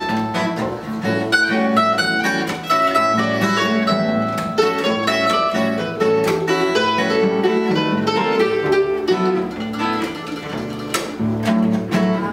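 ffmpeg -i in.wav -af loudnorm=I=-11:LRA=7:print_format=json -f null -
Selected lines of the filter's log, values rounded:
"input_i" : "-18.6",
"input_tp" : "-2.3",
"input_lra" : "3.8",
"input_thresh" : "-28.6",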